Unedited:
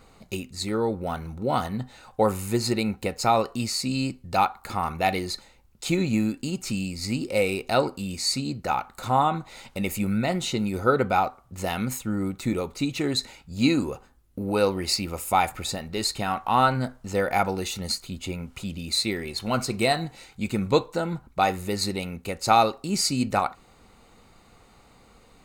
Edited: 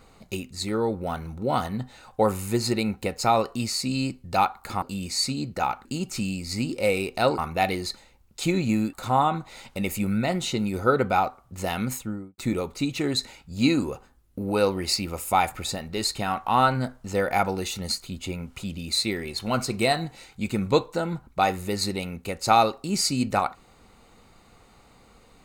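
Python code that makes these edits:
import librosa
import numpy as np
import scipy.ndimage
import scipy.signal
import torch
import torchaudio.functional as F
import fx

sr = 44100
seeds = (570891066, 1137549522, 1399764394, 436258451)

y = fx.studio_fade_out(x, sr, start_s=11.93, length_s=0.45)
y = fx.edit(y, sr, fx.swap(start_s=4.82, length_s=1.55, other_s=7.9, other_length_s=1.03), tone=tone)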